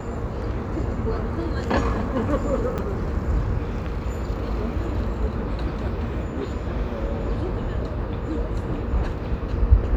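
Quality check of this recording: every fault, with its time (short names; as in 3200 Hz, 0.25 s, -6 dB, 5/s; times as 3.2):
2.78–2.79 gap 6.2 ms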